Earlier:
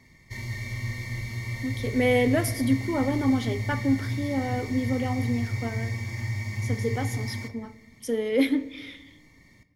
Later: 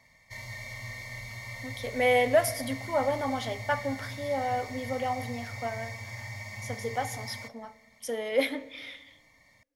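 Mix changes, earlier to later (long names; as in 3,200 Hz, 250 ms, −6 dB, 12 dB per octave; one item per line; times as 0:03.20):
background: send off
master: add low shelf with overshoot 470 Hz −8.5 dB, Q 3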